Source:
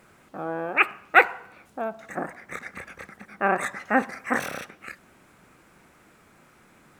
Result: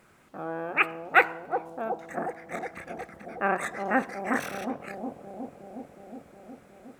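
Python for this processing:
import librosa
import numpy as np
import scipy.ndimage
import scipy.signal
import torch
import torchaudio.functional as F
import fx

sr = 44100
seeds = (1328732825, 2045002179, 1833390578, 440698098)

y = fx.echo_bbd(x, sr, ms=364, stages=2048, feedback_pct=75, wet_db=-5.0)
y = y * librosa.db_to_amplitude(-3.5)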